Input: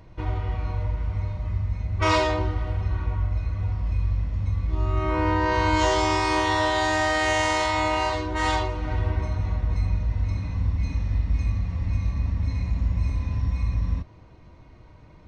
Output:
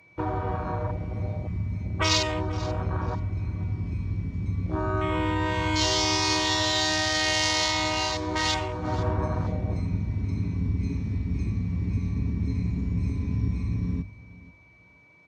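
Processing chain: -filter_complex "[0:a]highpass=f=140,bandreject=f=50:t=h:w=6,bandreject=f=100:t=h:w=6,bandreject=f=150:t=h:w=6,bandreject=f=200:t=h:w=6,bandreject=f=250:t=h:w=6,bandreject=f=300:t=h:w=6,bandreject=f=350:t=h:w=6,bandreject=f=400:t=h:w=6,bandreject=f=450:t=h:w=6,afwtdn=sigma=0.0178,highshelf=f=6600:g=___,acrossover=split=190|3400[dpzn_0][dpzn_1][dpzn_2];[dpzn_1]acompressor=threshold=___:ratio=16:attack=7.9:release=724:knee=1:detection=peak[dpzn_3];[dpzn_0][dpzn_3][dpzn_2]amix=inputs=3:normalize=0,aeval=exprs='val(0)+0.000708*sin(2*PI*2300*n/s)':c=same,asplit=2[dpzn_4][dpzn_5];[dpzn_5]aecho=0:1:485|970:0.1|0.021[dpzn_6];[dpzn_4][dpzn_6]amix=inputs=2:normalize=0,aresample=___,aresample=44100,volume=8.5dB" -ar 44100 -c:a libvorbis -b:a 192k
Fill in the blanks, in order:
10.5, -33dB, 32000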